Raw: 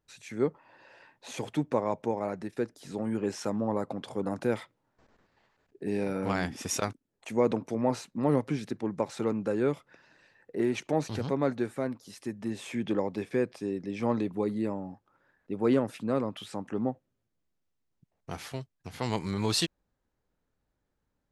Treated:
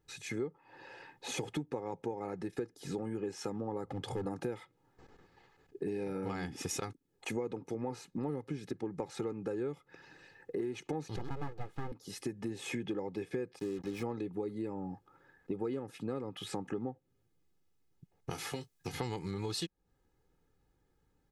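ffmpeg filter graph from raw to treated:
-filter_complex "[0:a]asettb=1/sr,asplit=3[s0][s1][s2];[s0]atrim=end=3.854[s3];[s1]atrim=start=3.85:end=4.26,asetpts=PTS-STARTPTS,afade=t=in:d=0.004:c=qsin,afade=t=out:st=0.406:d=0.004:c=qsin,lowshelf=f=130:t=q:w=1.5:g=8,volume=35.5,asoftclip=hard,volume=0.0282[s4];[s2]atrim=start=4.256[s5];[s3][s4]acrossfade=d=0.004:c1=hsin:c2=qsin[s6];[s6][s5]acrossfade=d=0.004:c1=qsin:c2=hsin,asettb=1/sr,asplit=3[s7][s8][s9];[s7]atrim=end=11.164[s10];[s8]atrim=start=11.16:end=11.92,asetpts=PTS-STARTPTS,afade=t=in:d=0.004:c=qsin,afade=t=out:st=0.756:d=0.004:c=qsin,aemphasis=mode=reproduction:type=75fm,aeval=exprs='abs(val(0))':c=same[s11];[s9]atrim=start=11.916[s12];[s10][s11]acrossfade=d=0.004:c1=hsin:c2=qsin[s13];[s13][s12]acrossfade=d=0.004:c1=qsin:c2=hsin,asettb=1/sr,asplit=3[s14][s15][s16];[s14]atrim=end=13.594[s17];[s15]atrim=start=13.59:end=14.03,asetpts=PTS-STARTPTS,afade=t=in:d=0.004:c=qsin,afade=t=out:st=0.436:d=0.004:c=qsin,highshelf=f=8300:g=3,acrusher=bits=6:mix=0:aa=0.5[s18];[s16]atrim=start=14.026[s19];[s17][s18]acrossfade=d=0.004:c1=hsin:c2=qsin[s20];[s20][s19]acrossfade=d=0.004:c1=qsin:c2=hsin,asettb=1/sr,asplit=3[s21][s22][s23];[s21]atrim=end=18.304[s24];[s22]atrim=start=18.3:end=18.92,asetpts=PTS-STARTPTS,afade=t=in:d=0.004:c=qsin,afade=t=out:st=0.616:d=0.004:c=qsin,highshelf=f=3500:g=9,acrossover=split=150|2400[s25][s26][s27];[s25]acompressor=threshold=0.00178:ratio=4[s28];[s26]acompressor=threshold=0.0112:ratio=4[s29];[s27]acompressor=threshold=0.00447:ratio=4[s30];[s28][s29][s30]amix=inputs=3:normalize=0,asplit=2[s31][s32];[s32]adelay=19,volume=0.398[s33];[s31][s33]amix=inputs=2:normalize=0,atrim=end_sample=27342[s34];[s23]atrim=start=18.916[s35];[s24][s34]acrossfade=d=0.004:c1=hsin:c2=qsin[s36];[s36][s35]acrossfade=d=0.004:c1=qsin:c2=hsin,equalizer=f=190:t=o:w=0.83:g=13,aecho=1:1:2.4:0.77,acompressor=threshold=0.0158:ratio=8,volume=1.19"

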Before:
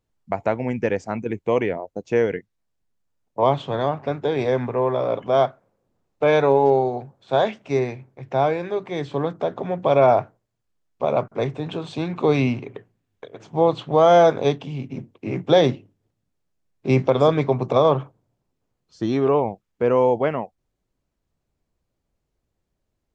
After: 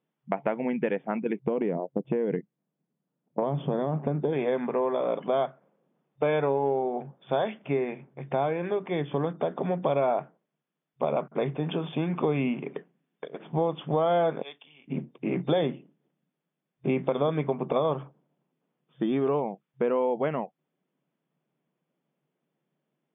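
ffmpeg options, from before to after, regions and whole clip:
-filter_complex "[0:a]asettb=1/sr,asplit=3[s0][s1][s2];[s0]atrim=end=1.394[s3];[s1]atrim=start=1.39:end=4.33,asetpts=PTS-STARTPTS,afade=t=in:d=0.004:c=qsin,afade=t=out:st=2.936:d=0.004:c=qsin,tiltshelf=f=800:g=8.5,acompressor=threshold=0.141:ratio=6:attack=3.2:release=140:knee=1:detection=peak[s4];[s2]atrim=start=4.326[s5];[s3][s4]acrossfade=d=0.004:c1=hsin:c2=qsin[s6];[s6][s5]acrossfade=d=0.004:c1=qsin:c2=hsin,asettb=1/sr,asplit=3[s7][s8][s9];[s7]atrim=end=14.424[s10];[s8]atrim=start=14.42:end=14.88,asetpts=PTS-STARTPTS,afade=t=in:d=0.004:c=qsin,afade=t=out:st=0.456:d=0.004:c=qsin,highpass=f=280:p=1,agate=range=0.0224:threshold=0.01:ratio=3:release=100:detection=peak,aderivative[s11];[s9]atrim=start=14.876[s12];[s10][s11]acrossfade=d=0.004:c1=hsin:c2=qsin[s13];[s13][s12]acrossfade=d=0.004:c1=qsin:c2=hsin,afftfilt=real='re*between(b*sr/4096,130,3600)':imag='im*between(b*sr/4096,130,3600)':win_size=4096:overlap=0.75,lowshelf=f=170:g=5,acompressor=threshold=0.0562:ratio=3"

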